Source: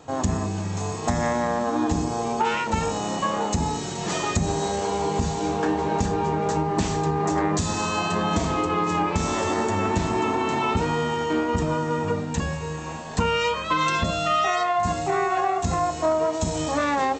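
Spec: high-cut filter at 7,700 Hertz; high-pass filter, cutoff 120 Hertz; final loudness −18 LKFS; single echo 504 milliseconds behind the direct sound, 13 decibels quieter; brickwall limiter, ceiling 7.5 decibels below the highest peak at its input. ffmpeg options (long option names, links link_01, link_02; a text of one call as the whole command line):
ffmpeg -i in.wav -af "highpass=120,lowpass=7700,alimiter=limit=-17.5dB:level=0:latency=1,aecho=1:1:504:0.224,volume=8.5dB" out.wav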